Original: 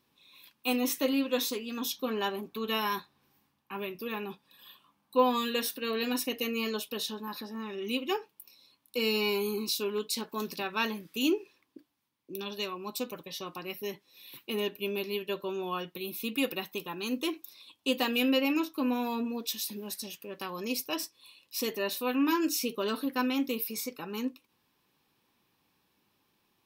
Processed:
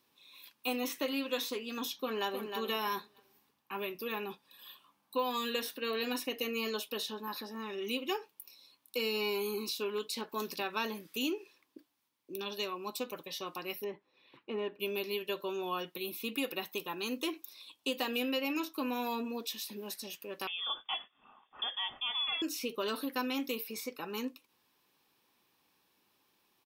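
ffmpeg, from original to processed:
-filter_complex "[0:a]asplit=2[a][b];[b]afade=t=in:st=2:d=0.01,afade=t=out:st=2.57:d=0.01,aecho=0:1:310|620|930:0.375837|0.0751675|0.0150335[c];[a][c]amix=inputs=2:normalize=0,asettb=1/sr,asplit=3[d][e][f];[d]atrim=end=13.844[g];[e]atrim=start=13.84:end=14.8,asetpts=PTS-STARTPTS,afade=t=in:d=0.004:c=qsin,afade=t=out:st=0.956:d=0.004:c=qsin,lowpass=1.5k[h];[f]atrim=start=14.796[i];[g][h]acrossfade=d=0.004:c1=hsin:c2=qsin[j];[j][i]acrossfade=d=0.004:c1=qsin:c2=hsin,asettb=1/sr,asplit=3[k][l][m];[k]atrim=end=20.474[n];[l]atrim=start=20.47:end=22.42,asetpts=PTS-STARTPTS,afade=t=in:d=0.004:c=qsin,afade=t=out:st=1.946:d=0.004:c=qsin,lowpass=f=3.1k:t=q:w=0.5098,lowpass=f=3.1k:t=q:w=0.6013,lowpass=f=3.1k:t=q:w=0.9,lowpass=f=3.1k:t=q:w=2.563,afreqshift=-3700[o];[m]atrim=start=22.416[p];[n][o]acrossfade=d=0.004:c1=hsin:c2=qsin[q];[q][p]acrossfade=d=0.004:c1=qsin:c2=hsin,bass=f=250:g=-8,treble=f=4k:g=2,acrossover=split=980|3500[r][s][t];[r]acompressor=threshold=-33dB:ratio=4[u];[s]acompressor=threshold=-38dB:ratio=4[v];[t]acompressor=threshold=-43dB:ratio=4[w];[u][v][w]amix=inputs=3:normalize=0"

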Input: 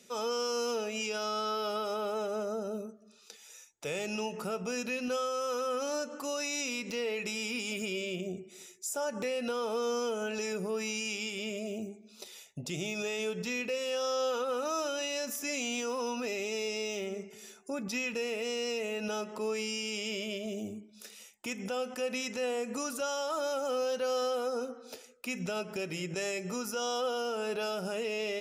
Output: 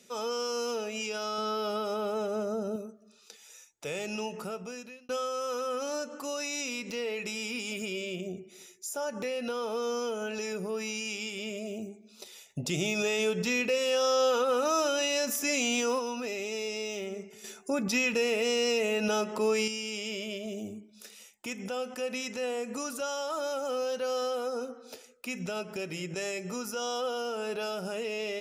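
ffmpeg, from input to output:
-filter_complex "[0:a]asettb=1/sr,asplit=3[a][b][c];[a]atrim=end=1.384[d];[b]atrim=start=1.38:end=2.76,asetpts=PTS-STARTPTS,afade=t=in:d=0.004:c=qsin,afade=t=out:st=1.376:d=0.004:c=qsin,lowshelf=f=300:g=8[e];[c]atrim=start=2.756[f];[d][e]acrossfade=d=0.004:c1=hsin:c2=qsin[g];[g][f]acrossfade=d=0.004:c1=qsin:c2=hsin,asettb=1/sr,asplit=3[h][i][j];[h]atrim=end=8.284[k];[i]atrim=start=8.28:end=11.08,asetpts=PTS-STARTPTS,afade=t=in:d=0.004:c=qsin,afade=t=out:st=2.796:d=0.004:c=qsin,bandreject=f=7.9k:w=6.9[l];[j]atrim=start=11.076[m];[k][l]acrossfade=d=0.004:c1=hsin:c2=qsin[n];[n][m]acrossfade=d=0.004:c1=qsin:c2=hsin,asplit=3[o][p][q];[o]afade=t=out:st=12.49:d=0.02[r];[p]acontrast=46,afade=t=in:st=12.49:d=0.02,afade=t=out:st=15.98:d=0.02[s];[q]afade=t=in:st=15.98:d=0.02[t];[r][s][t]amix=inputs=3:normalize=0,asettb=1/sr,asplit=3[u][v][w];[u]atrim=end=17.444[x];[v]atrim=start=17.44:end=19.68,asetpts=PTS-STARTPTS,afade=t=in:d=0.004:c=qsin,afade=t=out:st=2.236:d=0.004:c=qsin,acontrast=67[y];[w]atrim=start=19.676[z];[x][y]acrossfade=d=0.004:c1=hsin:c2=qsin[aa];[aa][z]acrossfade=d=0.004:c1=qsin:c2=hsin,asplit=2[ab][ac];[ab]atrim=end=5.09,asetpts=PTS-STARTPTS,afade=t=out:st=4.35:d=0.74[ad];[ac]atrim=start=5.09,asetpts=PTS-STARTPTS,afade=t=in:d=0.004:c=hsin[ae];[ad][ae]concat=n=2:v=0:a=1"

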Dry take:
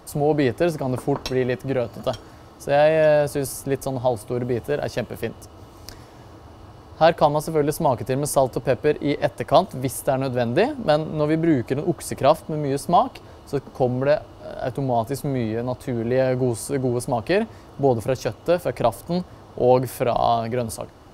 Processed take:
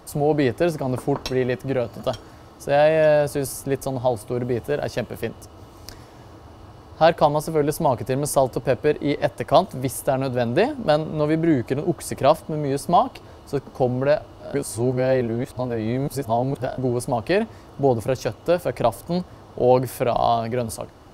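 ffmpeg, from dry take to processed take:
-filter_complex "[0:a]asplit=3[a][b][c];[a]atrim=end=14.542[d];[b]atrim=start=14.538:end=16.782,asetpts=PTS-STARTPTS,areverse[e];[c]atrim=start=16.778[f];[d][e]acrossfade=d=0.004:c1=hsin:c2=hsin[g];[g][f]acrossfade=d=0.004:c1=hsin:c2=hsin"

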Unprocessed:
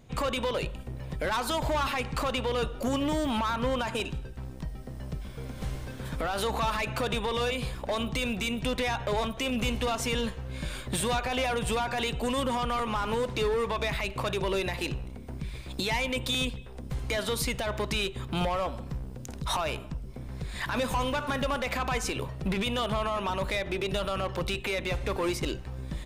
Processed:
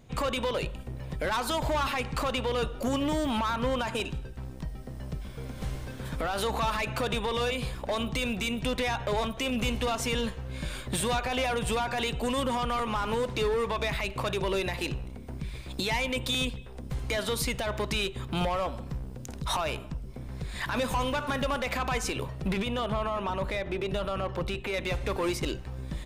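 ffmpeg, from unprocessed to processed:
-filter_complex "[0:a]asettb=1/sr,asplit=3[a][b][c];[a]atrim=end=22.624[d];[b]atrim=start=22.62:end=24.74,asetpts=PTS-STARTPTS,afade=t=in:d=0.004:c=qsin,afade=t=out:st=2.116:d=0.004:c=qsin,highshelf=f=2.8k:g=-8.5[e];[c]atrim=start=24.736[f];[d][e]acrossfade=d=0.004:c1=hsin:c2=qsin[g];[g][f]acrossfade=d=0.004:c1=qsin:c2=hsin"

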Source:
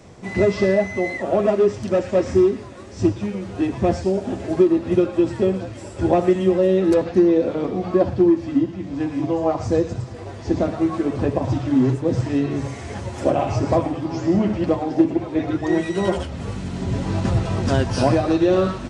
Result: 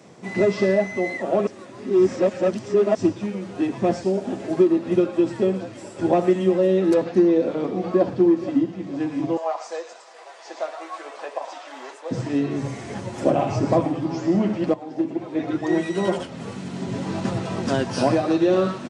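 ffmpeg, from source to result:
-filter_complex "[0:a]asplit=2[a][b];[b]afade=t=in:st=7.3:d=0.01,afade=t=out:st=8.12:d=0.01,aecho=0:1:470|940|1410|1880:0.188365|0.0847642|0.0381439|0.0171648[c];[a][c]amix=inputs=2:normalize=0,asettb=1/sr,asplit=3[d][e][f];[d]atrim=end=9.374[g];[e]atrim=start=9.37:end=12.11,asetpts=PTS-STARTPTS,afade=t=in:d=0.004:c=qsin,afade=t=out:st=2.736:d=0.004:c=qsin,highpass=f=630:w=0.5412,highpass=f=630:w=1.3066[h];[f]atrim=start=12.106[i];[g][h]acrossfade=d=0.004:c1=hsin:c2=qsin[j];[j][i]acrossfade=d=0.004:c1=qsin:c2=hsin,asettb=1/sr,asplit=3[k][l][m];[k]atrim=end=12.614[n];[l]atrim=start=12.61:end=14.14,asetpts=PTS-STARTPTS,afade=t=in:d=0.004:c=qsin,afade=t=out:st=1.526:d=0.004:c=qsin,lowshelf=f=200:g=7.5[o];[m]atrim=start=14.136[p];[n][o]acrossfade=d=0.004:c1=hsin:c2=qsin[q];[q][p]acrossfade=d=0.004:c1=qsin:c2=hsin,asplit=4[r][s][t][u];[r]atrim=end=1.472[v];[s]atrim=start=1.468:end=2.952,asetpts=PTS-STARTPTS,areverse[w];[t]atrim=start=2.948:end=14.74,asetpts=PTS-STARTPTS,afade=t=out:st=11.788:d=0.004:c=hsin:silence=0.237137[x];[u]atrim=start=14.74,asetpts=PTS-STARTPTS,afade=t=in:d=0.83:silence=0.237137[y];[v][w]acrossfade=d=0.004:c1=hsin:c2=hsin[z];[x][y]concat=n=2:v=0:a=1[aa];[z][aa]acrossfade=d=0.004:c1=hsin:c2=hsin,highpass=f=140:w=0.5412,highpass=f=140:w=1.3066,volume=-1.5dB"

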